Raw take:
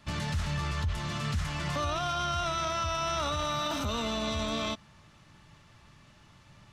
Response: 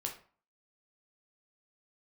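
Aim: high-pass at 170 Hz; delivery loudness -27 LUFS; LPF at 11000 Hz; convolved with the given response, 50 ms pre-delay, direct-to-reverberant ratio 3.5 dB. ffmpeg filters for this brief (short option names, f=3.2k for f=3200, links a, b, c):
-filter_complex "[0:a]highpass=170,lowpass=11k,asplit=2[a][b];[1:a]atrim=start_sample=2205,adelay=50[c];[b][c]afir=irnorm=-1:irlink=0,volume=-4dB[d];[a][d]amix=inputs=2:normalize=0,volume=4dB"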